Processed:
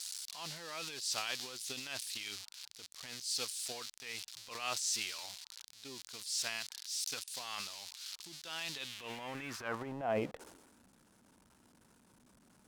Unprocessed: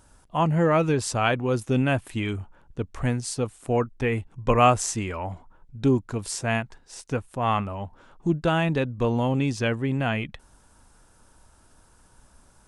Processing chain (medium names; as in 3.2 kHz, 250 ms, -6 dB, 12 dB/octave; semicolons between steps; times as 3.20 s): zero-crossing glitches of -21.5 dBFS; band-pass sweep 4.4 kHz -> 220 Hz, 8.69–10.85 s; transient shaper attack -10 dB, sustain +9 dB; trim -1 dB